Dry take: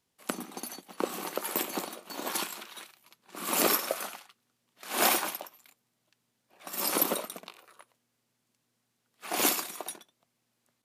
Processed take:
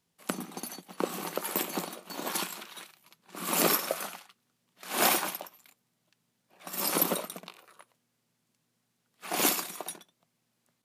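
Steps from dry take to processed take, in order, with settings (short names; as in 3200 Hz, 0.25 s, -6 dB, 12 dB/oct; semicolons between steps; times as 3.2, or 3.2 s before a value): bell 170 Hz +8.5 dB 0.37 oct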